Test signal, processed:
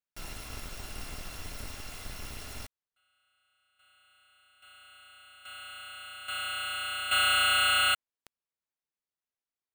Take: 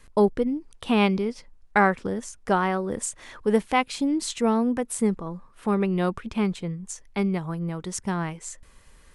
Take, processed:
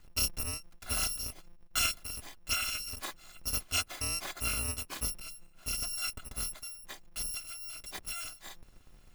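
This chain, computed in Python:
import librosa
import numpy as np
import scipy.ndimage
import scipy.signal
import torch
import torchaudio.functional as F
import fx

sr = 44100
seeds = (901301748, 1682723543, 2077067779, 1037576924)

y = fx.bit_reversed(x, sr, seeds[0], block=256)
y = fx.lowpass(y, sr, hz=2900.0, slope=6)
y = F.gain(torch.from_numpy(y), -2.5).numpy()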